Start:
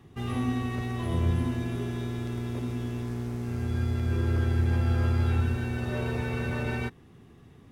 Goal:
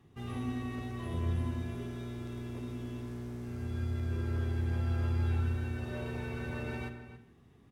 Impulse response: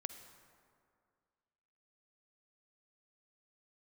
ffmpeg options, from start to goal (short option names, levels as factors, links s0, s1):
-filter_complex "[0:a]asplit=2[s0][s1];[s1]adelay=279.9,volume=0.251,highshelf=f=4000:g=-6.3[s2];[s0][s2]amix=inputs=2:normalize=0[s3];[1:a]atrim=start_sample=2205,afade=t=out:st=0.41:d=0.01,atrim=end_sample=18522,asetrate=83790,aresample=44100[s4];[s3][s4]afir=irnorm=-1:irlink=0"